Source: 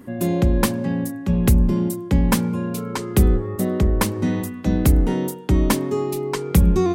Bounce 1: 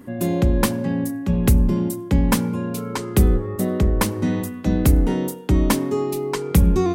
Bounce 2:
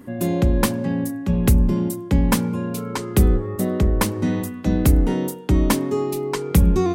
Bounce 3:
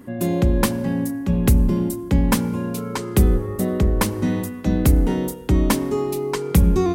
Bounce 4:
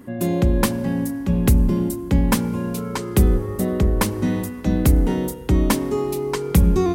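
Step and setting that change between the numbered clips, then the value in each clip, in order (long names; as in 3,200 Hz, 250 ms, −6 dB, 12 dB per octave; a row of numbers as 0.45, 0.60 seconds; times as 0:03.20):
feedback delay network reverb, RT60: 0.64, 0.31, 2.1, 4.6 seconds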